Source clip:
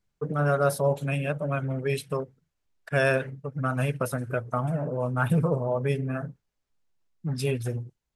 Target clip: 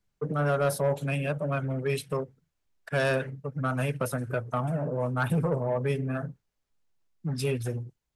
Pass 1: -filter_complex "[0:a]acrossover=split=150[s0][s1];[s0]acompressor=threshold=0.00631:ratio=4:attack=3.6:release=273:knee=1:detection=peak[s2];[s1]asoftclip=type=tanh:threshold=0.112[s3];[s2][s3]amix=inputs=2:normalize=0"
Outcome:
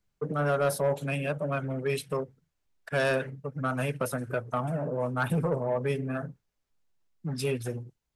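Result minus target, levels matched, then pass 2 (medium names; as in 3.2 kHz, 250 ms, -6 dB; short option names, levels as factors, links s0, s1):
compression: peak gain reduction +7.5 dB
-filter_complex "[0:a]acrossover=split=150[s0][s1];[s0]acompressor=threshold=0.02:ratio=4:attack=3.6:release=273:knee=1:detection=peak[s2];[s1]asoftclip=type=tanh:threshold=0.112[s3];[s2][s3]amix=inputs=2:normalize=0"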